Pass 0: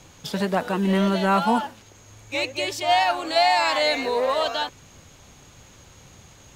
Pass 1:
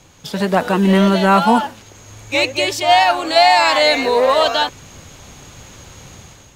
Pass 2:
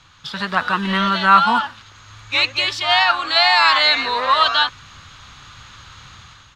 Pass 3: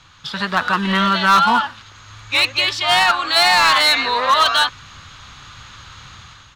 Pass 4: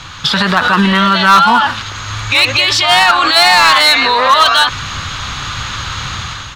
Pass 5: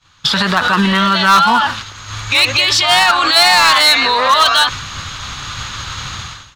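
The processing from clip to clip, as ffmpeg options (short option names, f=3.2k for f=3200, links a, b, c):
-af "dynaudnorm=f=170:g=5:m=9dB,volume=1dB"
-af "firequalizer=gain_entry='entry(120,0);entry(170,-5);entry(420,-11);entry(640,-8);entry(1200,11);entry(2200,3);entry(3800,8);entry(6400,-5);entry(14000,-17)':delay=0.05:min_phase=1,volume=-4dB"
-af "asoftclip=type=hard:threshold=-10.5dB,volume=2dB"
-af "alimiter=level_in=20dB:limit=-1dB:release=50:level=0:latency=1,volume=-2dB"
-af "agate=range=-33dB:threshold=-18dB:ratio=3:detection=peak,bass=f=250:g=0,treble=f=4k:g=4,volume=-2.5dB"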